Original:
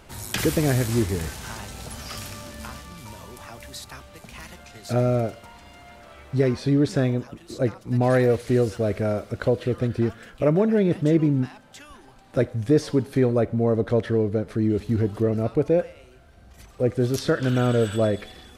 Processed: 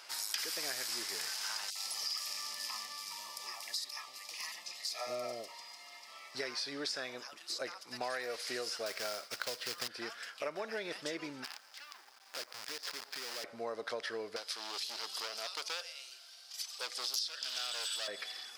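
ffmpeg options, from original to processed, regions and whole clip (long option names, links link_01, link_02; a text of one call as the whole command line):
ffmpeg -i in.wav -filter_complex "[0:a]asettb=1/sr,asplit=3[link_01][link_02][link_03];[link_01]atrim=end=1.704[link_04];[link_02]atrim=start=1.7:end=6.35,asetpts=PTS-STARTPTS,afade=type=in:duration=0.004:curve=qsin,afade=type=out:start_time=4.646:duration=0.004:curve=qsin,asuperstop=centerf=1500:order=20:qfactor=4.5,acrossover=split=610|2900[link_05][link_06][link_07];[link_06]adelay=50[link_08];[link_05]adelay=160[link_09];[link_09][link_08][link_07]amix=inputs=3:normalize=0,atrim=end_sample=205065[link_10];[link_03]atrim=start=6.346[link_11];[link_04][link_10]acrossfade=duration=0.004:curve1=hsin:curve2=qsin[link_12];[link_12][link_11]acrossfade=duration=0.004:curve1=qsin:curve2=hsin,asettb=1/sr,asplit=3[link_13][link_14][link_15];[link_13]atrim=end=8.864[link_16];[link_14]atrim=start=8.86:end=9.88,asetpts=PTS-STARTPTS,afade=type=in:duration=0.004:curve=qsin,afade=type=out:start_time=1.016:duration=0.004:curve=qsin,asubboost=boost=7.5:cutoff=230,agate=range=-33dB:threshold=-39dB:ratio=3:release=100:detection=peak,acrusher=bits=4:mode=log:mix=0:aa=0.000001[link_17];[link_15]atrim=start=9.876[link_18];[link_16][link_17]acrossfade=duration=0.004:curve1=hsin:curve2=qsin[link_19];[link_19][link_18]acrossfade=duration=0.004:curve1=qsin:curve2=hsin,asettb=1/sr,asplit=3[link_20][link_21][link_22];[link_20]atrim=end=11.444[link_23];[link_21]atrim=start=11.44:end=13.44,asetpts=PTS-STARTPTS,afade=type=in:duration=0.004:curve=qsin,afade=type=out:start_time=1.996:duration=0.004:curve=qsin,lowpass=3000,acompressor=threshold=-32dB:ratio=4:attack=3.2:release=140:knee=1:detection=peak,acrusher=bits=7:dc=4:mix=0:aa=0.000001[link_24];[link_22]atrim=start=13.436[link_25];[link_23][link_24]acrossfade=duration=0.004:curve1=hsin:curve2=qsin[link_26];[link_26][link_25]acrossfade=duration=0.004:curve1=qsin:curve2=hsin,asettb=1/sr,asplit=3[link_27][link_28][link_29];[link_27]atrim=end=14.364[link_30];[link_28]atrim=start=14.36:end=18.08,asetpts=PTS-STARTPTS,afade=type=in:duration=0.004:curve=qsin,afade=type=out:start_time=3.716:duration=0.004:curve=qsin,asoftclip=type=hard:threshold=-23dB,highpass=frequency=740:poles=1,highshelf=frequency=2600:width_type=q:width=1.5:gain=8[link_31];[link_29]atrim=start=18.076[link_32];[link_30][link_31]acrossfade=duration=0.004:curve1=hsin:curve2=qsin[link_33];[link_33][link_32]acrossfade=duration=0.004:curve1=qsin:curve2=hsin,highpass=1100,equalizer=frequency=5000:width=3.4:gain=13,acompressor=threshold=-35dB:ratio=6" out.wav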